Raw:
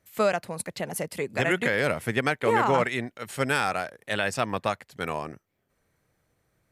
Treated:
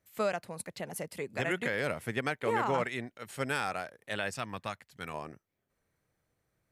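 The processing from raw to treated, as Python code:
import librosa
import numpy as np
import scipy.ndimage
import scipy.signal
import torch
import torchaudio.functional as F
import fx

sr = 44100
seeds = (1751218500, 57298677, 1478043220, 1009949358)

y = fx.peak_eq(x, sr, hz=490.0, db=-6.5, octaves=1.9, at=(4.31, 5.14))
y = y * 10.0 ** (-7.5 / 20.0)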